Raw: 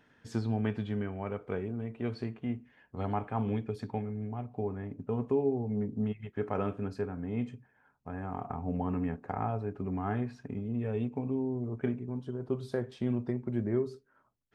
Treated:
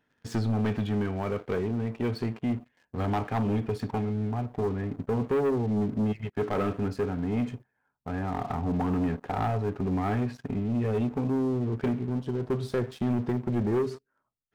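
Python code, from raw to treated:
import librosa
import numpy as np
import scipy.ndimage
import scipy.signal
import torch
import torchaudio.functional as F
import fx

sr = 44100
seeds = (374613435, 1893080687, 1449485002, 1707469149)

y = fx.leveller(x, sr, passes=3)
y = y * librosa.db_to_amplitude(-3.0)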